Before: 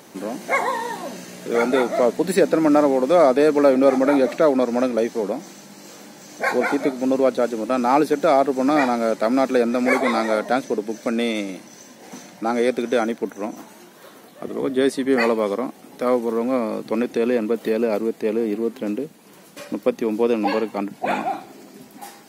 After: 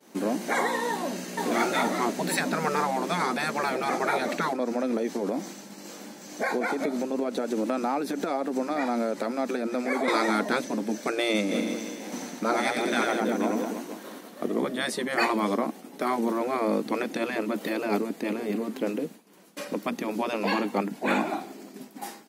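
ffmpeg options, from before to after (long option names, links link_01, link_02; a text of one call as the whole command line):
ffmpeg -i in.wav -filter_complex "[0:a]asplit=2[link_01][link_02];[link_02]afade=type=in:start_time=0.9:duration=0.01,afade=type=out:start_time=1.4:duration=0.01,aecho=0:1:470|940|1410|1880|2350|2820|3290|3760|4230|4700|5170:0.944061|0.61364|0.398866|0.259263|0.168521|0.109538|0.0712|0.04628|0.030082|0.0195533|0.0127096[link_03];[link_01][link_03]amix=inputs=2:normalize=0,asettb=1/sr,asplit=3[link_04][link_05][link_06];[link_04]atrim=end=4.534[link_07];[link_05]atrim=start=4.53:end=10.08,asetpts=PTS-STARTPTS,afade=type=in:duration=0.004:curve=qsin,afade=type=out:start_time=5.546:duration=0.004:curve=qsin,acompressor=threshold=-24dB:ratio=5:attack=3.2:release=140:knee=1:detection=peak[link_08];[link_06]atrim=start=10.076[link_09];[link_07][link_08]acrossfade=duration=0.004:curve1=hsin:curve2=qsin[link_10];[link_10][link_09]acrossfade=duration=0.004:curve1=qsin:curve2=hsin,asplit=3[link_11][link_12][link_13];[link_11]afade=type=out:start_time=11.5:duration=0.02[link_14];[link_12]aecho=1:1:90|198|327.6|483.1|669.7:0.631|0.398|0.251|0.158|0.1,afade=type=in:start_time=11.5:duration=0.02,afade=type=out:start_time=14.46:duration=0.02[link_15];[link_13]afade=type=in:start_time=14.46:duration=0.02[link_16];[link_14][link_15][link_16]amix=inputs=3:normalize=0,afftfilt=real='re*lt(hypot(re,im),0.447)':imag='im*lt(hypot(re,im),0.447)':win_size=1024:overlap=0.75,agate=range=-33dB:threshold=-39dB:ratio=3:detection=peak,lowshelf=frequency=140:width_type=q:width=1.5:gain=-13" out.wav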